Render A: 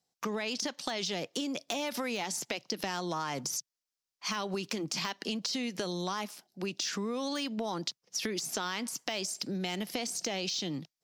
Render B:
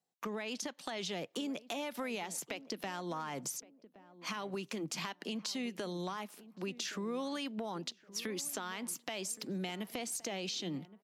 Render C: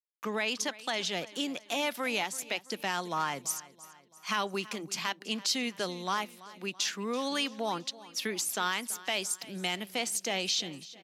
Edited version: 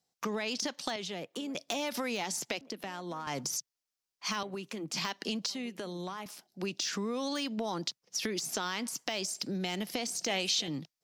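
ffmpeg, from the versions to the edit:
-filter_complex "[1:a]asplit=4[a][b][c][d];[0:a]asplit=6[e][f][g][h][i][j];[e]atrim=end=0.962[k];[a]atrim=start=0.958:end=1.552[l];[f]atrim=start=1.548:end=2.612[m];[b]atrim=start=2.608:end=3.272[n];[g]atrim=start=3.268:end=4.432[o];[c]atrim=start=4.428:end=4.932[p];[h]atrim=start=4.928:end=5.502[q];[d]atrim=start=5.498:end=6.262[r];[i]atrim=start=6.258:end=10.282[s];[2:a]atrim=start=10.278:end=10.682[t];[j]atrim=start=10.678[u];[k][l]acrossfade=d=0.004:c1=hsin:c2=hsin[v];[v][m]acrossfade=d=0.004:c1=hsin:c2=hsin[w];[w][n]acrossfade=d=0.004:c1=hsin:c2=hsin[x];[x][o]acrossfade=d=0.004:c1=hsin:c2=hsin[y];[y][p]acrossfade=d=0.004:c1=hsin:c2=hsin[z];[z][q]acrossfade=d=0.004:c1=hsin:c2=hsin[aa];[aa][r]acrossfade=d=0.004:c1=hsin:c2=hsin[ab];[ab][s]acrossfade=d=0.004:c1=hsin:c2=hsin[ac];[ac][t]acrossfade=d=0.004:c1=hsin:c2=hsin[ad];[ad][u]acrossfade=d=0.004:c1=hsin:c2=hsin"

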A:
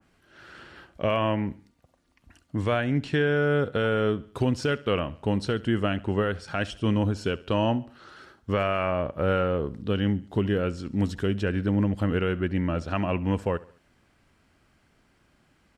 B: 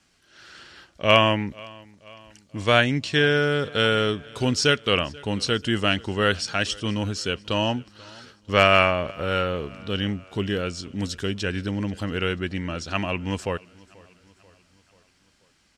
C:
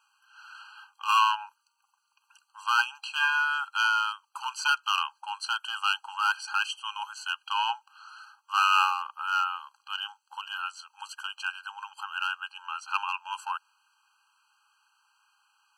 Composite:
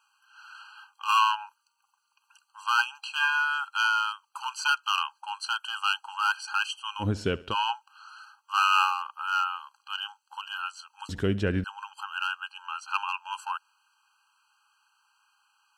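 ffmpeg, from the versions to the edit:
-filter_complex "[0:a]asplit=2[a][b];[2:a]asplit=3[c][d][e];[c]atrim=end=7.09[f];[a]atrim=start=6.99:end=7.55[g];[d]atrim=start=7.45:end=11.092[h];[b]atrim=start=11.088:end=11.642[i];[e]atrim=start=11.638[j];[f][g]acrossfade=d=0.1:c1=tri:c2=tri[k];[k][h]acrossfade=d=0.1:c1=tri:c2=tri[l];[l][i]acrossfade=d=0.004:c1=hsin:c2=hsin[m];[m][j]acrossfade=d=0.004:c1=hsin:c2=hsin"

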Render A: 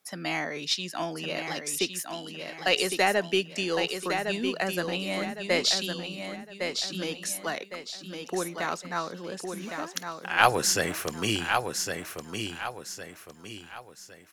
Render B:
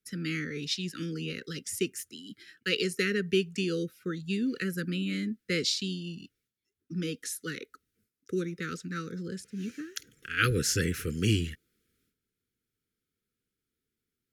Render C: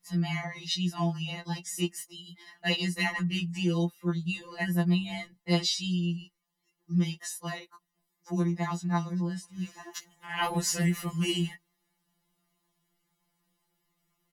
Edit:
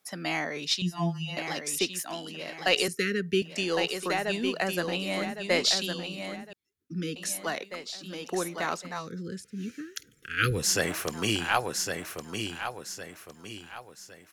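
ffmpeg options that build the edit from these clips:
-filter_complex "[1:a]asplit=3[a][b][c];[0:a]asplit=5[d][e][f][g][h];[d]atrim=end=0.822[i];[2:a]atrim=start=0.818:end=1.372[j];[e]atrim=start=1.368:end=2.882[k];[a]atrim=start=2.878:end=3.422[l];[f]atrim=start=3.418:end=6.532[m];[b]atrim=start=6.528:end=7.162[n];[g]atrim=start=7.158:end=9.11[o];[c]atrim=start=8.87:end=10.76[p];[h]atrim=start=10.52[q];[i][j]acrossfade=d=0.004:c1=hsin:c2=hsin[r];[r][k]acrossfade=d=0.004:c1=hsin:c2=hsin[s];[s][l]acrossfade=d=0.004:c1=hsin:c2=hsin[t];[t][m]acrossfade=d=0.004:c1=hsin:c2=hsin[u];[u][n]acrossfade=d=0.004:c1=hsin:c2=hsin[v];[v][o]acrossfade=d=0.004:c1=hsin:c2=hsin[w];[w][p]acrossfade=d=0.24:c1=tri:c2=tri[x];[x][q]acrossfade=d=0.24:c1=tri:c2=tri"

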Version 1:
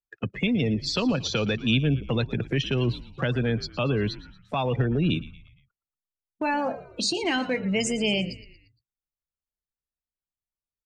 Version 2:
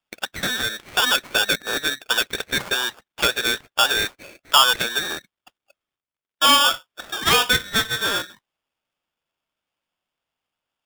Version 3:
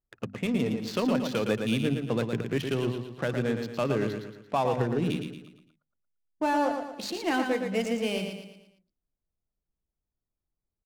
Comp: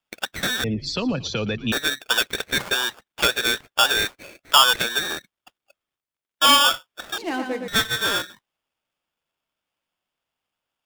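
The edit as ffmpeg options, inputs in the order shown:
-filter_complex "[1:a]asplit=3[a][b][c];[a]atrim=end=0.642[d];[0:a]atrim=start=0.638:end=1.722[e];[b]atrim=start=1.718:end=7.182[f];[2:a]atrim=start=7.178:end=7.682[g];[c]atrim=start=7.678[h];[d][e]acrossfade=d=0.004:c1=hsin:c2=hsin[i];[i][f]acrossfade=d=0.004:c1=hsin:c2=hsin[j];[j][g]acrossfade=d=0.004:c1=hsin:c2=hsin[k];[k][h]acrossfade=d=0.004:c1=hsin:c2=hsin"

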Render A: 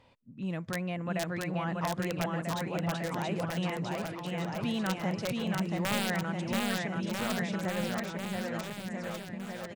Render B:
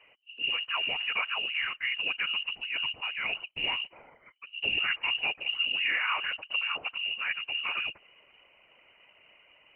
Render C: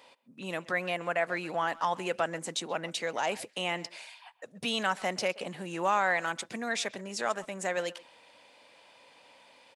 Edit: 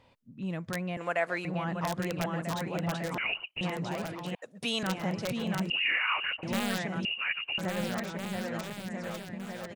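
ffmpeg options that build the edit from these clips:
-filter_complex "[2:a]asplit=2[a][b];[1:a]asplit=3[c][d][e];[0:a]asplit=6[f][g][h][i][j][k];[f]atrim=end=0.972[l];[a]atrim=start=0.968:end=1.452[m];[g]atrim=start=1.448:end=3.182[n];[c]atrim=start=3.178:end=3.612[o];[h]atrim=start=3.608:end=4.352[p];[b]atrim=start=4.348:end=4.832[q];[i]atrim=start=4.828:end=5.702[r];[d]atrim=start=5.698:end=6.432[s];[j]atrim=start=6.428:end=7.052[t];[e]atrim=start=7.048:end=7.582[u];[k]atrim=start=7.578[v];[l][m]acrossfade=d=0.004:c1=hsin:c2=hsin[w];[w][n]acrossfade=d=0.004:c1=hsin:c2=hsin[x];[x][o]acrossfade=d=0.004:c1=hsin:c2=hsin[y];[y][p]acrossfade=d=0.004:c1=hsin:c2=hsin[z];[z][q]acrossfade=d=0.004:c1=hsin:c2=hsin[aa];[aa][r]acrossfade=d=0.004:c1=hsin:c2=hsin[ab];[ab][s]acrossfade=d=0.004:c1=hsin:c2=hsin[ac];[ac][t]acrossfade=d=0.004:c1=hsin:c2=hsin[ad];[ad][u]acrossfade=d=0.004:c1=hsin:c2=hsin[ae];[ae][v]acrossfade=d=0.004:c1=hsin:c2=hsin"

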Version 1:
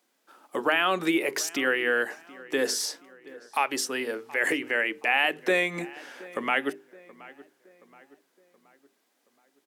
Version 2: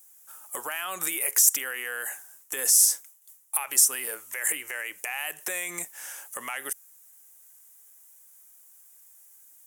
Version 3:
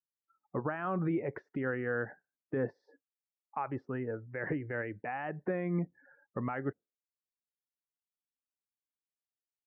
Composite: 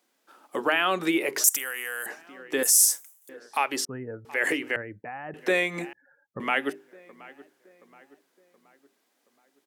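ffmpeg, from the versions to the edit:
-filter_complex "[1:a]asplit=2[a][b];[2:a]asplit=3[c][d][e];[0:a]asplit=6[f][g][h][i][j][k];[f]atrim=end=1.442[l];[a]atrim=start=1.438:end=2.062[m];[g]atrim=start=2.058:end=2.632[n];[b]atrim=start=2.628:end=3.292[o];[h]atrim=start=3.288:end=3.852[p];[c]atrim=start=3.848:end=4.252[q];[i]atrim=start=4.248:end=4.762[r];[d]atrim=start=4.758:end=5.342[s];[j]atrim=start=5.338:end=5.932[t];[e]atrim=start=5.928:end=6.402[u];[k]atrim=start=6.398[v];[l][m]acrossfade=d=0.004:c1=hsin:c2=hsin[w];[w][n]acrossfade=d=0.004:c1=hsin:c2=hsin[x];[x][o]acrossfade=d=0.004:c1=hsin:c2=hsin[y];[y][p]acrossfade=d=0.004:c1=hsin:c2=hsin[z];[z][q]acrossfade=d=0.004:c1=hsin:c2=hsin[aa];[aa][r]acrossfade=d=0.004:c1=hsin:c2=hsin[ab];[ab][s]acrossfade=d=0.004:c1=hsin:c2=hsin[ac];[ac][t]acrossfade=d=0.004:c1=hsin:c2=hsin[ad];[ad][u]acrossfade=d=0.004:c1=hsin:c2=hsin[ae];[ae][v]acrossfade=d=0.004:c1=hsin:c2=hsin"

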